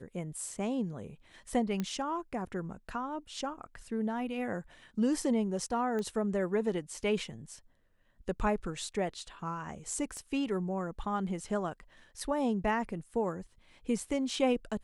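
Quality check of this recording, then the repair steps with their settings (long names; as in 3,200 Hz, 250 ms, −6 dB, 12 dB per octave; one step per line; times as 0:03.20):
0:01.80: click −20 dBFS
0:05.99: click −25 dBFS
0:10.17: click −32 dBFS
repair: click removal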